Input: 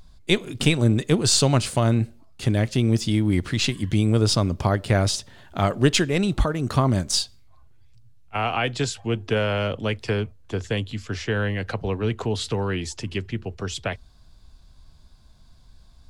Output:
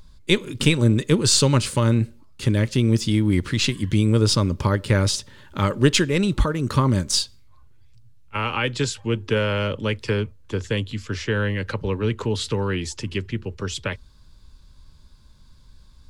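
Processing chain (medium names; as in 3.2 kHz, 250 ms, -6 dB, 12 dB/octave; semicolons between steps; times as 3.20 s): Butterworth band-stop 710 Hz, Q 3.3; trim +1.5 dB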